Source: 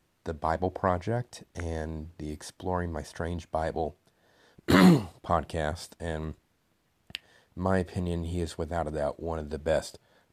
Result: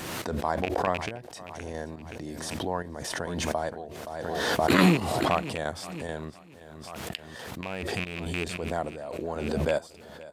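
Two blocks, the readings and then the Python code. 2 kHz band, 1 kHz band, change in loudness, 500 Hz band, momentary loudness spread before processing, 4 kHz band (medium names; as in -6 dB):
+4.0 dB, +1.5 dB, 0.0 dB, +0.5 dB, 15 LU, +5.0 dB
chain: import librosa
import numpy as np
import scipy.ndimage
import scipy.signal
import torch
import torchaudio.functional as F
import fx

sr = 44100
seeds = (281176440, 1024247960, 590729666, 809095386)

y = fx.rattle_buzz(x, sr, strikes_db=-26.0, level_db=-18.0)
y = fx.highpass(y, sr, hz=180.0, slope=6)
y = fx.chopper(y, sr, hz=2.3, depth_pct=65, duty_pct=50)
y = fx.echo_feedback(y, sr, ms=522, feedback_pct=35, wet_db=-19)
y = fx.pre_swell(y, sr, db_per_s=26.0)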